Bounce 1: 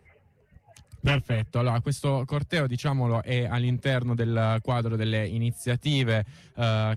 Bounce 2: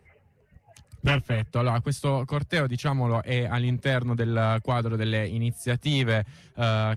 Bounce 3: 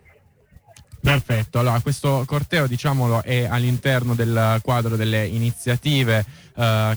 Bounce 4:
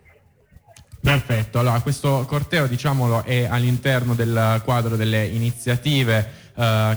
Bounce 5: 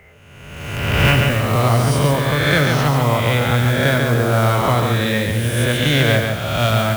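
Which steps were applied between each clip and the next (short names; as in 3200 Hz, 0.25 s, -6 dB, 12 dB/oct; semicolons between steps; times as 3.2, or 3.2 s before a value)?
dynamic EQ 1300 Hz, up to +3 dB, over -41 dBFS, Q 0.93
modulation noise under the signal 21 dB; gain +5.5 dB
Schroeder reverb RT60 0.74 s, combs from 25 ms, DRR 17.5 dB
spectral swells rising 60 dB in 1.47 s; lo-fi delay 0.141 s, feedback 35%, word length 6-bit, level -4 dB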